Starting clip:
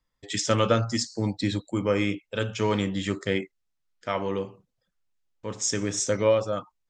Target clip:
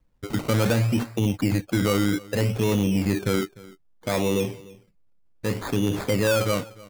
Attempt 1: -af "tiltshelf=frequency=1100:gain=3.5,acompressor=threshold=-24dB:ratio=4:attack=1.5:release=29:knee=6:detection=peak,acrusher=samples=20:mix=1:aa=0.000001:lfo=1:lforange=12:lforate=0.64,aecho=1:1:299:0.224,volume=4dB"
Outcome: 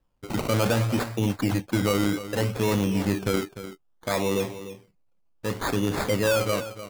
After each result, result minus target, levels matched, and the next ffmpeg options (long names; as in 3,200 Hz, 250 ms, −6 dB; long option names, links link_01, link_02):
echo-to-direct +8.5 dB; 1,000 Hz band +3.0 dB
-af "tiltshelf=frequency=1100:gain=3.5,acompressor=threshold=-24dB:ratio=4:attack=1.5:release=29:knee=6:detection=peak,acrusher=samples=20:mix=1:aa=0.000001:lfo=1:lforange=12:lforate=0.64,aecho=1:1:299:0.0841,volume=4dB"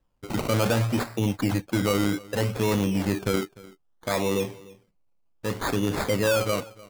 1,000 Hz band +3.0 dB
-af "tiltshelf=frequency=1100:gain=10.5,acompressor=threshold=-24dB:ratio=4:attack=1.5:release=29:knee=6:detection=peak,acrusher=samples=20:mix=1:aa=0.000001:lfo=1:lforange=12:lforate=0.64,aecho=1:1:299:0.0841,volume=4dB"